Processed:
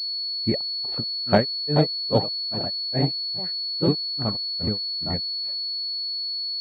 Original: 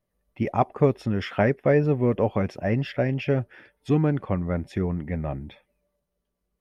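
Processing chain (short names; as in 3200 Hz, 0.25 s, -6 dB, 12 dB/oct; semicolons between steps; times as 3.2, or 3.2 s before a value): echoes that change speed 0.369 s, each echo +2 st, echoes 3, each echo -6 dB; grains 0.213 s, grains 2.4/s, spray 0.1 s; pulse-width modulation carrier 4400 Hz; gain +4 dB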